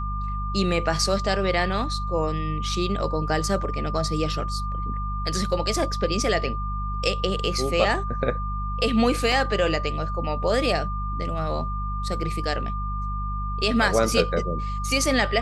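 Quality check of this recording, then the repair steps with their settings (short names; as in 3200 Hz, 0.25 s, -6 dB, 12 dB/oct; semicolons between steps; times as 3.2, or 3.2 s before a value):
hum 50 Hz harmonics 4 -29 dBFS
tone 1200 Hz -31 dBFS
9.32 gap 2.2 ms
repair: notch 1200 Hz, Q 30; de-hum 50 Hz, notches 4; interpolate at 9.32, 2.2 ms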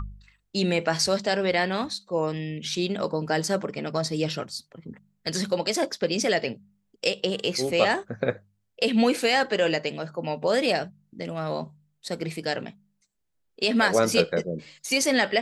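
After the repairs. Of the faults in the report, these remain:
none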